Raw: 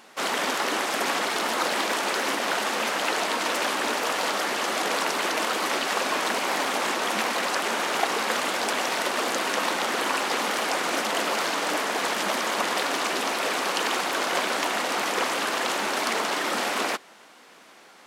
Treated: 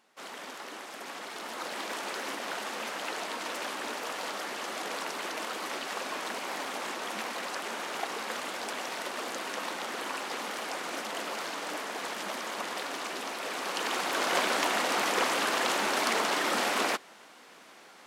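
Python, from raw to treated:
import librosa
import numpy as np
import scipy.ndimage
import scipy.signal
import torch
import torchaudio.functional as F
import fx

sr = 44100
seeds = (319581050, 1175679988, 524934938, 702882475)

y = fx.gain(x, sr, db=fx.line((1.0, -16.5), (1.96, -10.0), (13.42, -10.0), (14.34, -2.0)))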